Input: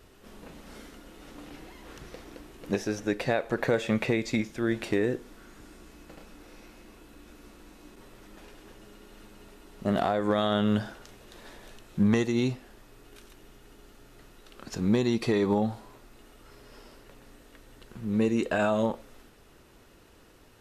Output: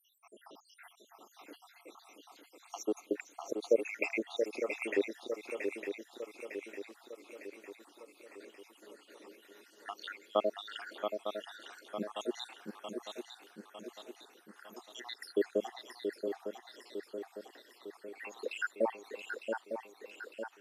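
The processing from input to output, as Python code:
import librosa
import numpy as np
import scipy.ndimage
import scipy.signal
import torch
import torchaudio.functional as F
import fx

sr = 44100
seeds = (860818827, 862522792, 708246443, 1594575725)

y = fx.spec_dropout(x, sr, seeds[0], share_pct=85)
y = scipy.signal.sosfilt(scipy.signal.butter(4, 320.0, 'highpass', fs=sr, output='sos'), y)
y = fx.echo_swing(y, sr, ms=904, ratio=3, feedback_pct=53, wet_db=-6.0)
y = F.gain(torch.from_numpy(y), 1.0).numpy()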